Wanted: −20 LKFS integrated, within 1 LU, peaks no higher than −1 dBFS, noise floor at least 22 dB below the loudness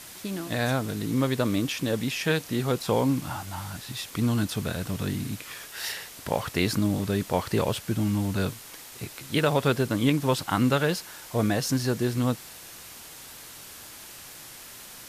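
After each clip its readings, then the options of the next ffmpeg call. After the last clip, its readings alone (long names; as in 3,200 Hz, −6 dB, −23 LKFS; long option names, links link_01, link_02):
background noise floor −45 dBFS; target noise floor −50 dBFS; integrated loudness −27.5 LKFS; sample peak −10.5 dBFS; target loudness −20.0 LKFS
→ -af "afftdn=noise_reduction=6:noise_floor=-45"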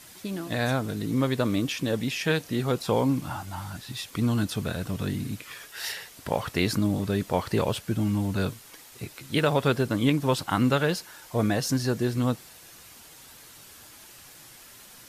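background noise floor −49 dBFS; target noise floor −50 dBFS
→ -af "afftdn=noise_reduction=6:noise_floor=-49"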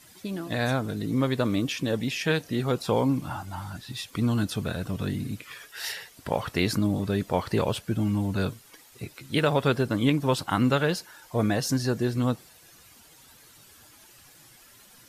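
background noise floor −54 dBFS; integrated loudness −27.5 LKFS; sample peak −10.5 dBFS; target loudness −20.0 LKFS
→ -af "volume=7.5dB"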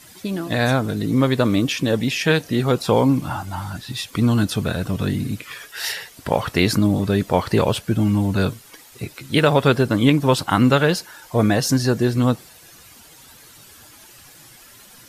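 integrated loudness −20.0 LKFS; sample peak −3.0 dBFS; background noise floor −47 dBFS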